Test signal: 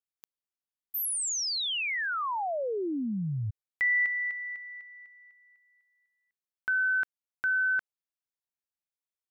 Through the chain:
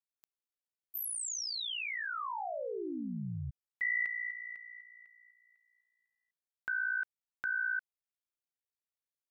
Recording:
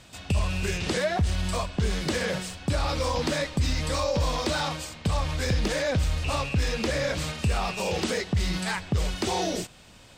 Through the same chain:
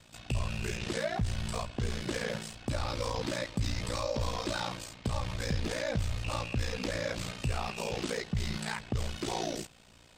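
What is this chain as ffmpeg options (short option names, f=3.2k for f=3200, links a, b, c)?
-af "aeval=exprs='val(0)*sin(2*PI*29*n/s)':c=same,volume=-4dB"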